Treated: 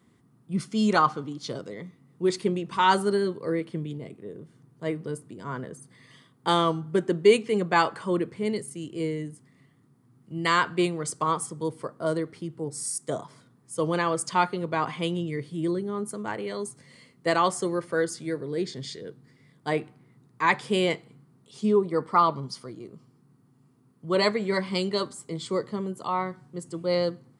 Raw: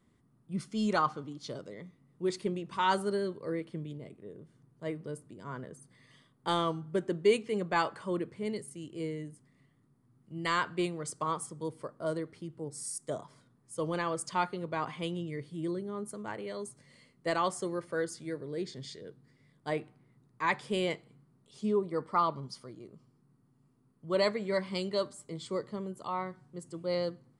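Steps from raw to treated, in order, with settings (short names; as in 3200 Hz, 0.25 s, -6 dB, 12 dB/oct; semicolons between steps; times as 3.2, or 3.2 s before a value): HPF 92 Hz; notch 590 Hz, Q 12; gain +7.5 dB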